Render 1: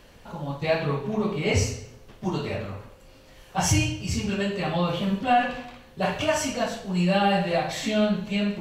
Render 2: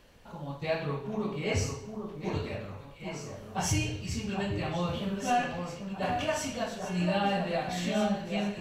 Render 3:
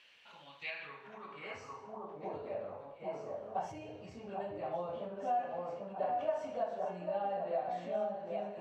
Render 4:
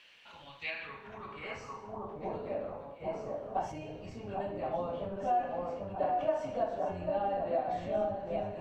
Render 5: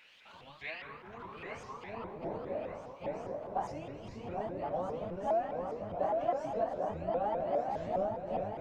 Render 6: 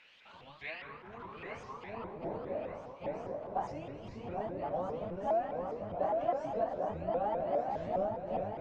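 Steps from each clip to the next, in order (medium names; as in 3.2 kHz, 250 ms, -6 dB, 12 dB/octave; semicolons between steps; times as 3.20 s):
echo whose repeats swap between lows and highs 793 ms, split 1.6 kHz, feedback 66%, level -6 dB; trim -7 dB
compression 4:1, threshold -36 dBFS, peak gain reduction 11 dB; band-pass sweep 2.7 kHz -> 650 Hz, 0.57–2.34 s; trim +6.5 dB
octave divider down 1 oct, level -2 dB; trim +3.5 dB
dynamic bell 3.1 kHz, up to -5 dB, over -57 dBFS, Q 1.4; on a send: thinning echo 1195 ms, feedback 47%, level -10 dB; on the sum: vibrato with a chosen wave saw up 4.9 Hz, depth 250 cents; trim -1 dB
distance through air 66 m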